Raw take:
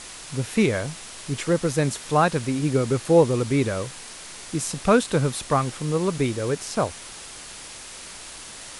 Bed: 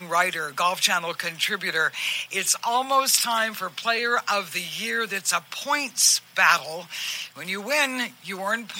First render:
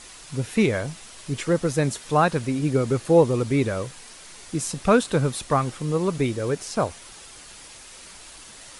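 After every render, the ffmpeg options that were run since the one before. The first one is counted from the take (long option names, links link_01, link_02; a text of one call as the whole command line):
ffmpeg -i in.wav -af "afftdn=noise_reduction=6:noise_floor=-40" out.wav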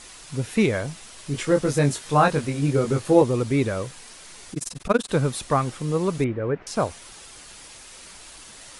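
ffmpeg -i in.wav -filter_complex "[0:a]asettb=1/sr,asplit=3[link_01][link_02][link_03];[link_01]atrim=end=1.324[link_04];[link_02]atrim=start=1.32:end=3.22,asetpts=PTS-STARTPTS,afade=type=in:duration=0.004:curve=qsin,afade=type=out:start_time=1.896:duration=0.004:curve=qsin,asplit=2[link_05][link_06];[link_06]adelay=21,volume=-4dB[link_07];[link_05][link_07]amix=inputs=2:normalize=0,atrim=end_sample=83790[link_08];[link_03]atrim=start=3.216[link_09];[link_04][link_08]acrossfade=duration=0.004:curve1=hsin:curve2=qsin[link_10];[link_10][link_09]acrossfade=duration=0.004:curve1=qsin:curve2=hsin,asettb=1/sr,asplit=3[link_11][link_12][link_13];[link_11]atrim=end=4.534[link_14];[link_12]atrim=start=4.53:end=5.1,asetpts=PTS-STARTPTS,afade=type=in:duration=0.004:curve=qsin,afade=type=out:start_time=0.566:duration=0.004:curve=qsin,tremolo=f=21:d=1[link_15];[link_13]atrim=start=5.096[link_16];[link_14][link_15]acrossfade=duration=0.004:curve1=hsin:curve2=qsin[link_17];[link_17][link_16]acrossfade=duration=0.004:curve1=qsin:curve2=hsin,asettb=1/sr,asplit=3[link_18][link_19][link_20];[link_18]atrim=end=6.244[link_21];[link_19]atrim=start=6.24:end=6.67,asetpts=PTS-STARTPTS,afade=type=in:duration=0.004:curve=qsin,afade=type=out:start_time=0.426:duration=0.004:curve=qsin,lowpass=frequency=2200:width=0.5412,lowpass=frequency=2200:width=1.3066[link_22];[link_20]atrim=start=6.666[link_23];[link_21][link_22]acrossfade=duration=0.004:curve1=hsin:curve2=qsin[link_24];[link_24][link_23]acrossfade=duration=0.004:curve1=qsin:curve2=hsin" out.wav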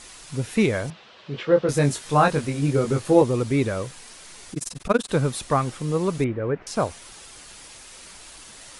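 ffmpeg -i in.wav -filter_complex "[0:a]asettb=1/sr,asplit=3[link_01][link_02][link_03];[link_01]atrim=end=0.904[link_04];[link_02]atrim=start=0.9:end=1.69,asetpts=PTS-STARTPTS,afade=type=in:duration=0.004:curve=qsin,afade=type=out:start_time=0.786:duration=0.004:curve=qsin,highpass=160,equalizer=frequency=280:width_type=q:width=4:gain=-7,equalizer=frequency=510:width_type=q:width=4:gain=4,equalizer=frequency=2100:width_type=q:width=4:gain=-4,lowpass=frequency=3800:width=0.5412,lowpass=frequency=3800:width=1.3066[link_05];[link_03]atrim=start=1.686[link_06];[link_04][link_05]acrossfade=duration=0.004:curve1=hsin:curve2=qsin[link_07];[link_07][link_06]acrossfade=duration=0.004:curve1=qsin:curve2=hsin" out.wav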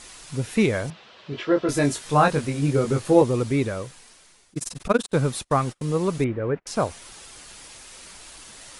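ffmpeg -i in.wav -filter_complex "[0:a]asettb=1/sr,asplit=3[link_01][link_02][link_03];[link_01]atrim=end=1.324[link_04];[link_02]atrim=start=1.32:end=1.93,asetpts=PTS-STARTPTS,afade=type=in:duration=0.004:curve=qsin,afade=type=out:start_time=0.606:duration=0.004:curve=qsin,aecho=1:1:3:0.57,atrim=end_sample=26901[link_05];[link_03]atrim=start=1.926[link_06];[link_04][link_05]acrossfade=duration=0.004:curve1=hsin:curve2=qsin[link_07];[link_07][link_06]acrossfade=duration=0.004:curve1=qsin:curve2=hsin,asettb=1/sr,asplit=3[link_08][link_09][link_10];[link_08]atrim=end=5.064[link_11];[link_09]atrim=start=5.06:end=6.66,asetpts=PTS-STARTPTS,afade=type=in:duration=0.004:curve=qsin,afade=type=out:start_time=1.596:duration=0.004:curve=qsin,agate=range=-33dB:threshold=-35dB:ratio=16:release=100:detection=peak[link_12];[link_10]atrim=start=6.656[link_13];[link_11][link_12]acrossfade=duration=0.004:curve1=hsin:curve2=qsin[link_14];[link_14][link_13]acrossfade=duration=0.004:curve1=qsin:curve2=hsin,asplit=2[link_15][link_16];[link_15]atrim=end=4.55,asetpts=PTS-STARTPTS,afade=type=out:start_time=3.44:duration=1.11:silence=0.0891251[link_17];[link_16]atrim=start=4.55,asetpts=PTS-STARTPTS,afade=type=in:duration=0.004:curve=hsin:silence=0.0891251[link_18];[link_17][link_18]concat=n=2:v=0:a=1" out.wav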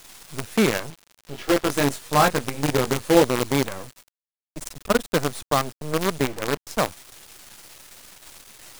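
ffmpeg -i in.wav -filter_complex "[0:a]acrossover=split=150[link_01][link_02];[link_01]asoftclip=type=hard:threshold=-35.5dB[link_03];[link_03][link_02]amix=inputs=2:normalize=0,acrusher=bits=4:dc=4:mix=0:aa=0.000001" out.wav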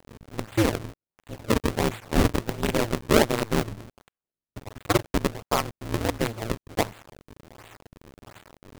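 ffmpeg -i in.wav -af "acrusher=samples=37:mix=1:aa=0.000001:lfo=1:lforange=59.2:lforate=1.4,aeval=exprs='val(0)*sin(2*PI*110*n/s)':channel_layout=same" out.wav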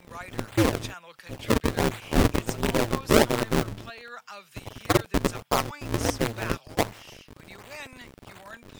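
ffmpeg -i in.wav -i bed.wav -filter_complex "[1:a]volume=-19dB[link_01];[0:a][link_01]amix=inputs=2:normalize=0" out.wav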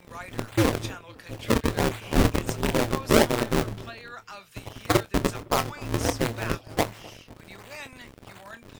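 ffmpeg -i in.wav -filter_complex "[0:a]asplit=2[link_01][link_02];[link_02]adelay=26,volume=-12dB[link_03];[link_01][link_03]amix=inputs=2:normalize=0,asplit=2[link_04][link_05];[link_05]adelay=255,lowpass=frequency=1600:poles=1,volume=-21.5dB,asplit=2[link_06][link_07];[link_07]adelay=255,lowpass=frequency=1600:poles=1,volume=0.44,asplit=2[link_08][link_09];[link_09]adelay=255,lowpass=frequency=1600:poles=1,volume=0.44[link_10];[link_04][link_06][link_08][link_10]amix=inputs=4:normalize=0" out.wav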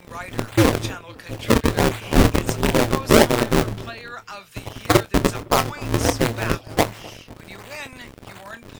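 ffmpeg -i in.wav -af "volume=6dB,alimiter=limit=-1dB:level=0:latency=1" out.wav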